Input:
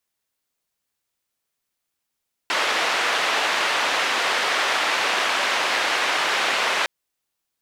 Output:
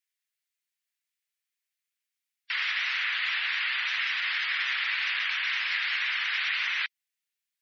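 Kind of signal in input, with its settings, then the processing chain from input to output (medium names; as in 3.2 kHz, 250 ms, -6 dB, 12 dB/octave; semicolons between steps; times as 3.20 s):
noise band 530–2600 Hz, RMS -22 dBFS 4.36 s
spectral gate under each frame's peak -15 dB strong; ladder high-pass 1.6 kHz, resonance 40%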